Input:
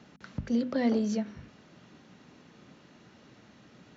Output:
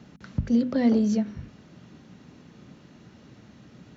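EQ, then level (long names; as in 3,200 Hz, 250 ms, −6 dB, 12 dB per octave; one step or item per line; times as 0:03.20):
low-shelf EQ 270 Hz +11 dB
high-shelf EQ 5,900 Hz +4 dB
0.0 dB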